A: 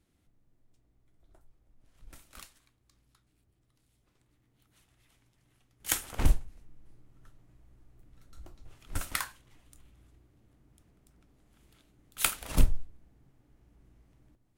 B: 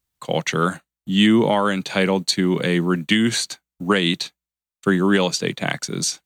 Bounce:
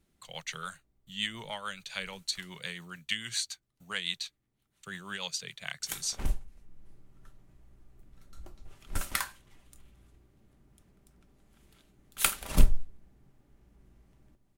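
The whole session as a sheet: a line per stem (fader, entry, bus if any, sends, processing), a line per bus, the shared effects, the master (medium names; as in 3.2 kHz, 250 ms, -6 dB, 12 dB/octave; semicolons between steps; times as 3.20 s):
+1.0 dB, 0.00 s, no send, comb 5.1 ms, depth 32%; auto duck -10 dB, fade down 1.80 s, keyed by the second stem
-6.5 dB, 0.00 s, no send, rotary cabinet horn 7 Hz; amplifier tone stack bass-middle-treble 10-0-10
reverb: none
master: none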